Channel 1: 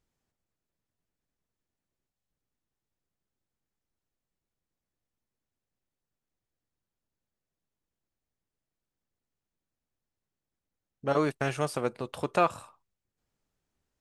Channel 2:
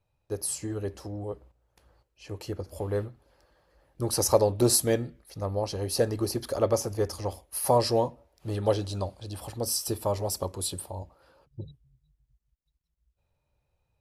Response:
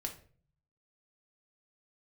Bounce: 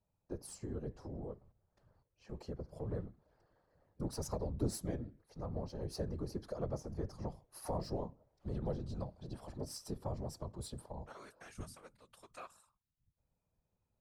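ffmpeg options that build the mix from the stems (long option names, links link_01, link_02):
-filter_complex "[0:a]tiltshelf=frequency=970:gain=-10,volume=-16.5dB[link_01];[1:a]adynamicsmooth=sensitivity=2.5:basefreq=4900,volume=-1.5dB[link_02];[link_01][link_02]amix=inputs=2:normalize=0,equalizer=frequency=2800:width=1.2:gain=-8,acrossover=split=210[link_03][link_04];[link_04]acompressor=threshold=-40dB:ratio=2[link_05];[link_03][link_05]amix=inputs=2:normalize=0,afftfilt=real='hypot(re,im)*cos(2*PI*random(0))':imag='hypot(re,im)*sin(2*PI*random(1))':win_size=512:overlap=0.75"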